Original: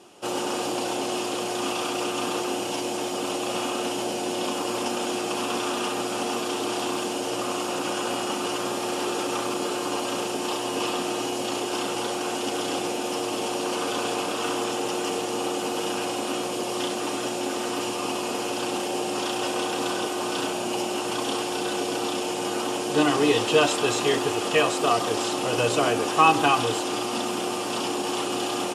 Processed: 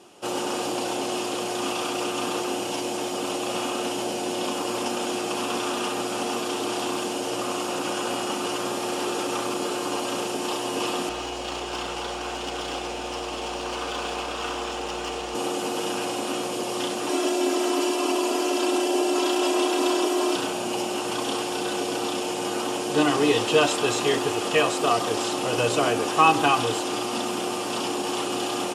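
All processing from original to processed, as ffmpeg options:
ffmpeg -i in.wav -filter_complex "[0:a]asettb=1/sr,asplit=3[link_01][link_02][link_03];[link_01]atrim=end=11.094[link_04];[link_02]atrim=start=11.09:end=15.35,asetpts=PTS-STARTPTS,afade=type=in:duration=0.004:curve=qsin,afade=type=out:start_time=4.256:duration=0.004:curve=qsin,equalizer=frequency=200:width_type=o:width=2.3:gain=-8.5,adynamicsmooth=sensitivity=3.5:basefreq=5700,aeval=exprs='val(0)+0.00631*(sin(2*PI*60*n/s)+sin(2*PI*2*60*n/s)/2+sin(2*PI*3*60*n/s)/3+sin(2*PI*4*60*n/s)/4+sin(2*PI*5*60*n/s)/5)':channel_layout=same[link_05];[link_03]atrim=start=15.346[link_06];[link_04][link_05]acrossfade=duration=0.004:curve1=hsin:curve2=qsin[link_07];[link_07][link_06]acrossfade=duration=0.004:curve1=qsin:curve2=hsin,asettb=1/sr,asplit=3[link_08][link_09][link_10];[link_08]atrim=end=17.094[link_11];[link_09]atrim=start=17.09:end=20.36,asetpts=PTS-STARTPTS,afade=type=in:duration=0.004:curve=qsin,afade=type=out:start_time=3.266:duration=0.004:curve=qsin,lowshelf=frequency=210:width_type=q:width=1.5:gain=-12.5,aecho=1:1:3:0.81,atrim=end_sample=144207[link_12];[link_10]atrim=start=20.356[link_13];[link_11][link_12]acrossfade=duration=0.004:curve1=hsin:curve2=qsin[link_14];[link_14][link_13]acrossfade=duration=0.004:curve1=qsin:curve2=hsin" out.wav

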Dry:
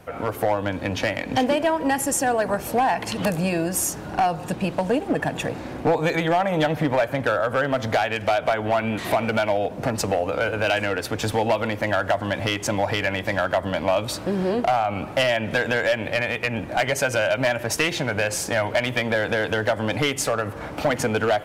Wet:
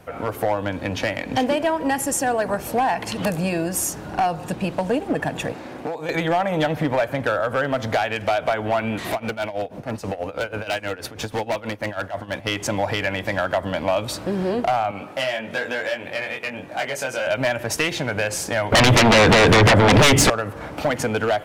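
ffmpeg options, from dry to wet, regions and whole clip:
ffmpeg -i in.wav -filter_complex "[0:a]asettb=1/sr,asplit=3[link_01][link_02][link_03];[link_01]atrim=end=5.524[link_04];[link_02]atrim=start=5.52:end=6.09,asetpts=PTS-STARTPTS,afade=type=in:duration=0.004:curve=qsin,afade=type=out:start_time=0.566:duration=0.004:curve=qsin,highpass=frequency=270:poles=1,acrossover=split=890|4700[link_05][link_06][link_07];[link_05]acompressor=threshold=-28dB:ratio=4[link_08];[link_06]acompressor=threshold=-39dB:ratio=4[link_09];[link_07]acompressor=threshold=-57dB:ratio=4[link_10];[link_08][link_09][link_10]amix=inputs=3:normalize=0[link_11];[link_03]atrim=start=6.086[link_12];[link_04][link_11]acrossfade=duration=0.004:curve1=hsin:curve2=qsin[link_13];[link_13][link_12]acrossfade=duration=0.004:curve1=qsin:curve2=hsin,asettb=1/sr,asplit=3[link_14][link_15][link_16];[link_14]atrim=end=9.124[link_17];[link_15]atrim=start=9.12:end=12.47,asetpts=PTS-STARTPTS,afade=type=in:duration=0.004:curve=qsin,afade=type=out:start_time=3.346:duration=0.004:curve=qsin,bandreject=frequency=7600:width=17,tremolo=f=6.2:d=0.85,aeval=exprs='0.133*(abs(mod(val(0)/0.133+3,4)-2)-1)':channel_layout=same[link_18];[link_16]atrim=start=12.466[link_19];[link_17][link_18]acrossfade=duration=0.004:curve1=hsin:curve2=qsin[link_20];[link_20][link_19]acrossfade=duration=0.004:curve1=qsin:curve2=hsin,asettb=1/sr,asplit=3[link_21][link_22][link_23];[link_21]atrim=end=14.914[link_24];[link_22]atrim=start=14.91:end=17.27,asetpts=PTS-STARTPTS,afade=type=in:duration=0.004:curve=qsin,afade=type=out:start_time=2.356:duration=0.004:curve=qsin,flanger=delay=20:depth=2.5:speed=1.1,highpass=frequency=260:poles=1[link_25];[link_23]atrim=start=17.266[link_26];[link_24][link_25]acrossfade=duration=0.004:curve1=hsin:curve2=qsin[link_27];[link_27][link_26]acrossfade=duration=0.004:curve1=qsin:curve2=hsin,asettb=1/sr,asplit=3[link_28][link_29][link_30];[link_28]atrim=end=18.724[link_31];[link_29]atrim=start=18.72:end=20.3,asetpts=PTS-STARTPTS,afade=type=in:duration=0.004:curve=qsin,afade=type=out:start_time=1.576:duration=0.004:curve=qsin,lowpass=frequency=3800:poles=1,lowshelf=frequency=280:gain=7,aeval=exprs='0.335*sin(PI/2*3.98*val(0)/0.335)':channel_layout=same[link_32];[link_30]atrim=start=20.296[link_33];[link_31][link_32]acrossfade=duration=0.004:curve1=hsin:curve2=qsin[link_34];[link_34][link_33]acrossfade=duration=0.004:curve1=qsin:curve2=hsin" out.wav

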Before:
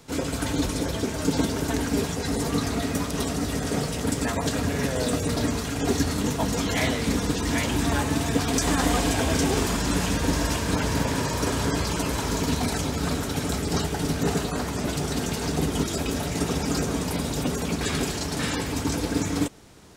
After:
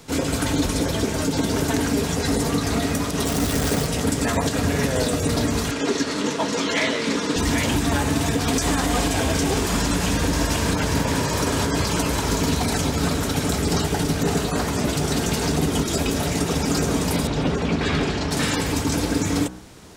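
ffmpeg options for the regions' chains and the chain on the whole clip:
ffmpeg -i in.wav -filter_complex "[0:a]asettb=1/sr,asplit=3[link_01][link_02][link_03];[link_01]atrim=end=3.254[link_04];[link_02]atrim=start=3.25:end=3.87,asetpts=PTS-STARTPTS,afade=type=in:duration=0.004:curve=qsin,afade=type=out:start_time=0.616:duration=0.004:curve=qsin,asubboost=boost=6:cutoff=110,acrusher=bits=6:dc=4:mix=0:aa=0.000001[link_05];[link_03]atrim=start=3.866[link_06];[link_04][link_05]acrossfade=duration=0.004:curve1=hsin:curve2=qsin[link_07];[link_07][link_06]acrossfade=duration=0.004:curve1=qsin:curve2=hsin,asettb=1/sr,asplit=3[link_08][link_09][link_10];[link_08]atrim=end=5.714[link_11];[link_09]atrim=start=5.71:end=7.36,asetpts=PTS-STARTPTS,afade=type=in:duration=0.004:curve=qsin,afade=type=out:start_time=1.646:duration=0.004:curve=qsin,highpass=280,lowpass=6100,bandreject=frequency=750:width=5.5[link_12];[link_10]atrim=start=7.356[link_13];[link_11][link_12]acrossfade=duration=0.004:curve1=hsin:curve2=qsin[link_14];[link_14][link_13]acrossfade=duration=0.004:curve1=qsin:curve2=hsin,asettb=1/sr,asplit=3[link_15][link_16][link_17];[link_15]atrim=end=17.274[link_18];[link_16]atrim=start=17.27:end=18.31,asetpts=PTS-STARTPTS,afade=type=in:duration=0.004:curve=qsin,afade=type=out:start_time=1.036:duration=0.004:curve=qsin,lowpass=3700,volume=19dB,asoftclip=hard,volume=-19dB[link_19];[link_17]atrim=start=18.306[link_20];[link_18][link_19]acrossfade=duration=0.004:curve1=hsin:curve2=qsin[link_21];[link_21][link_20]acrossfade=duration=0.004:curve1=qsin:curve2=hsin,bandreject=frequency=62.22:width_type=h:width=4,bandreject=frequency=124.44:width_type=h:width=4,bandreject=frequency=186.66:width_type=h:width=4,bandreject=frequency=248.88:width_type=h:width=4,bandreject=frequency=311.1:width_type=h:width=4,bandreject=frequency=373.32:width_type=h:width=4,bandreject=frequency=435.54:width_type=h:width=4,bandreject=frequency=497.76:width_type=h:width=4,bandreject=frequency=559.98:width_type=h:width=4,bandreject=frequency=622.2:width_type=h:width=4,bandreject=frequency=684.42:width_type=h:width=4,bandreject=frequency=746.64:width_type=h:width=4,bandreject=frequency=808.86:width_type=h:width=4,bandreject=frequency=871.08:width_type=h:width=4,bandreject=frequency=933.3:width_type=h:width=4,bandreject=frequency=995.52:width_type=h:width=4,bandreject=frequency=1057.74:width_type=h:width=4,bandreject=frequency=1119.96:width_type=h:width=4,bandreject=frequency=1182.18:width_type=h:width=4,bandreject=frequency=1244.4:width_type=h:width=4,bandreject=frequency=1306.62:width_type=h:width=4,bandreject=frequency=1368.84:width_type=h:width=4,bandreject=frequency=1431.06:width_type=h:width=4,bandreject=frequency=1493.28:width_type=h:width=4,bandreject=frequency=1555.5:width_type=h:width=4,bandreject=frequency=1617.72:width_type=h:width=4,bandreject=frequency=1679.94:width_type=h:width=4,bandreject=frequency=1742.16:width_type=h:width=4,bandreject=frequency=1804.38:width_type=h:width=4,alimiter=limit=-17dB:level=0:latency=1:release=141,acontrast=49" out.wav

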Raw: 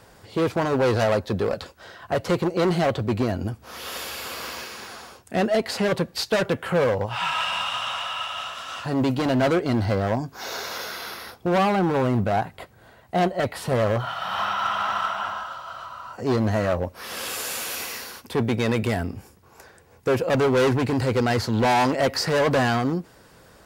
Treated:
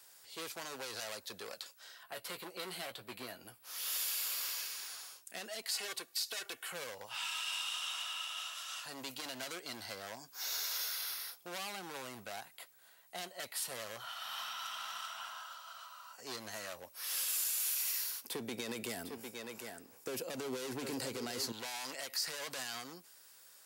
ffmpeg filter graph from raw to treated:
ffmpeg -i in.wav -filter_complex "[0:a]asettb=1/sr,asplit=3[link_01][link_02][link_03];[link_01]atrim=end=2.034[link_04];[link_02]atrim=start=2.03:end=3.65,asetpts=PTS-STARTPTS,afade=type=in:duration=0.004:curve=qsin,afade=type=out:start_time=1.616:duration=0.004:curve=qsin,equalizer=frequency=6300:width_type=o:width=0.7:gain=-11.5,asplit=2[link_05][link_06];[link_06]adelay=16,volume=-9dB[link_07];[link_05][link_07]amix=inputs=2:normalize=0,atrim=end_sample=71442[link_08];[link_03]atrim=start=3.646[link_09];[link_04][link_08]acrossfade=duration=0.004:curve1=hsin:curve2=qsin[link_10];[link_10][link_09]acrossfade=duration=0.004:curve1=qsin:curve2=hsin,asettb=1/sr,asplit=3[link_11][link_12][link_13];[link_11]atrim=end=5.714[link_14];[link_12]atrim=start=5.71:end=6.72,asetpts=PTS-STARTPTS,afade=type=in:duration=0.004:curve=qsin,afade=type=out:start_time=1.006:duration=0.004:curve=qsin,lowshelf=frequency=210:gain=-6.5,aecho=1:1:2.7:0.59,atrim=end_sample=44541[link_15];[link_13]atrim=start=6.716[link_16];[link_14][link_15]acrossfade=duration=0.004:curve1=hsin:curve2=qsin[link_17];[link_17][link_16]acrossfade=duration=0.004:curve1=qsin:curve2=hsin,asettb=1/sr,asplit=3[link_18][link_19][link_20];[link_18]atrim=end=18.224[link_21];[link_19]atrim=start=18.22:end=21.52,asetpts=PTS-STARTPTS,afade=type=in:duration=0.004:curve=qsin,afade=type=out:start_time=3.296:duration=0.004:curve=qsin,equalizer=frequency=300:width=0.36:gain=13.5,aecho=1:1:752:0.299,atrim=end_sample=145530[link_22];[link_20]atrim=start=21.516[link_23];[link_21][link_22]acrossfade=duration=0.004:curve1=hsin:curve2=qsin[link_24];[link_24][link_23]acrossfade=duration=0.004:curve1=qsin:curve2=hsin,aderivative,alimiter=level_in=1.5dB:limit=-24dB:level=0:latency=1:release=54,volume=-1.5dB,acrossover=split=330|3000[link_25][link_26][link_27];[link_26]acompressor=threshold=-43dB:ratio=6[link_28];[link_25][link_28][link_27]amix=inputs=3:normalize=0" out.wav

